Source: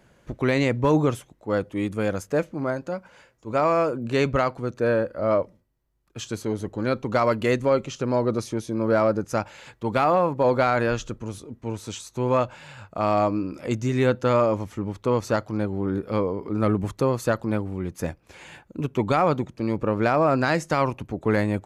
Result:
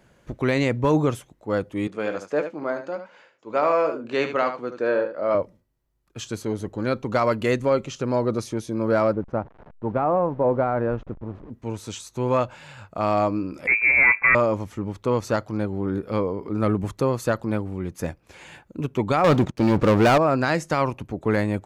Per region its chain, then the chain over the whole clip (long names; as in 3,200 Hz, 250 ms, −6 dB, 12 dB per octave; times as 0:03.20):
0:01.87–0:05.35: band-pass filter 300–4,600 Hz + double-tracking delay 20 ms −12.5 dB + single-tap delay 74 ms −9 dB
0:09.13–0:11.50: hold until the input has moved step −36.5 dBFS + low-pass filter 1,000 Hz
0:13.67–0:14.35: leveller curve on the samples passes 2 + voice inversion scrambler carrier 2,500 Hz
0:19.24–0:20.18: low-pass filter 7,100 Hz + leveller curve on the samples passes 3
whole clip: no processing